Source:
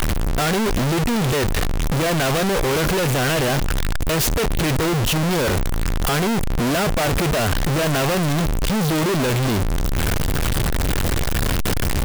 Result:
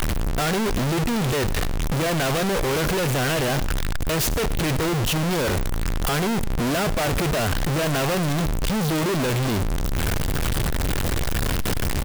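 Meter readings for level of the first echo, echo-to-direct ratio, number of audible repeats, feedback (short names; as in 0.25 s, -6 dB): -18.5 dB, -18.5 dB, 1, no steady repeat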